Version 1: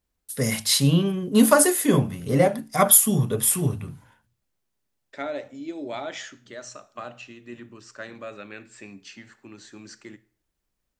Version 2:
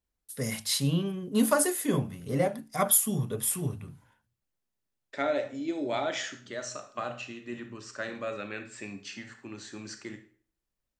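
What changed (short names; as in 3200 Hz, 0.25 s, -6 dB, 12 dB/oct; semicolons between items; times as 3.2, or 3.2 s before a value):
first voice -8.0 dB; second voice: send +10.5 dB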